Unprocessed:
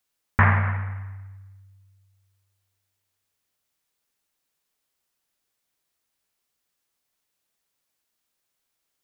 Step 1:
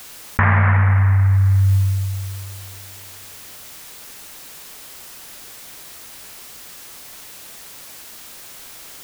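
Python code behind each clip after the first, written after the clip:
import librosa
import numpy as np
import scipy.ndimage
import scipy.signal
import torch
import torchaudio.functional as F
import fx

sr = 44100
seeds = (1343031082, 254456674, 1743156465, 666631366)

y = fx.env_flatten(x, sr, amount_pct=100)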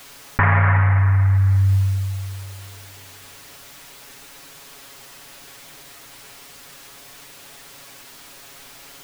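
y = fx.high_shelf(x, sr, hz=5900.0, db=-7.5)
y = y + 0.69 * np.pad(y, (int(7.2 * sr / 1000.0), 0))[:len(y)]
y = F.gain(torch.from_numpy(y), -1.5).numpy()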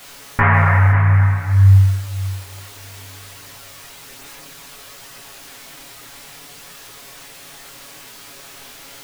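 y = x + 10.0 ** (-11.0 / 20.0) * np.pad(x, (int(534 * sr / 1000.0), 0))[:len(x)]
y = fx.chorus_voices(y, sr, voices=2, hz=0.58, base_ms=22, depth_ms=4.9, mix_pct=50)
y = F.gain(torch.from_numpy(y), 6.5).numpy()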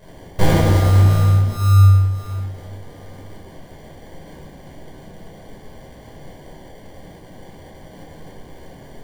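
y = fx.sample_hold(x, sr, seeds[0], rate_hz=1300.0, jitter_pct=0)
y = fx.room_shoebox(y, sr, seeds[1], volume_m3=680.0, walls='furnished', distance_m=5.2)
y = F.gain(torch.from_numpy(y), -10.0).numpy()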